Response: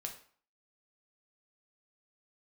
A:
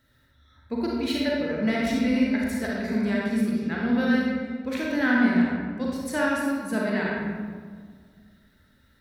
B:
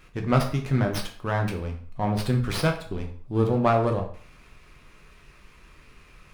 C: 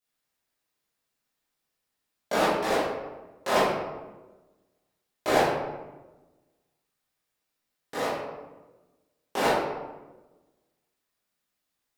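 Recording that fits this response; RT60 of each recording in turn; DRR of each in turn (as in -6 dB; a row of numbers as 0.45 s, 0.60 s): B; 1.7 s, 0.50 s, 1.2 s; -4.0 dB, 2.5 dB, -12.0 dB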